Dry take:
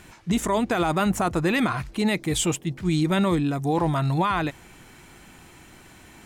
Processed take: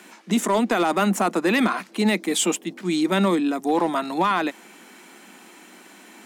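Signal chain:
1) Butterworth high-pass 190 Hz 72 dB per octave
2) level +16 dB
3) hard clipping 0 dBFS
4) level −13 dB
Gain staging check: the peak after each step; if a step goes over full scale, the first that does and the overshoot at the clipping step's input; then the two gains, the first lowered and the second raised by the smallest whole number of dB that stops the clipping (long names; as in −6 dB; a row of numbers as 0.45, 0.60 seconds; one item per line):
−11.5, +4.5, 0.0, −13.0 dBFS
step 2, 4.5 dB
step 2 +11 dB, step 4 −8 dB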